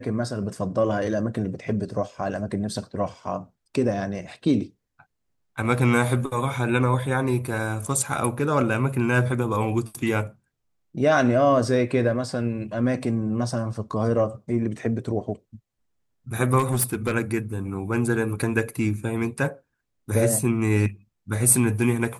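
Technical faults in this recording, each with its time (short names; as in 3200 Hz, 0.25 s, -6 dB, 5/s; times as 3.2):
16.58–17.12 clipped -17.5 dBFS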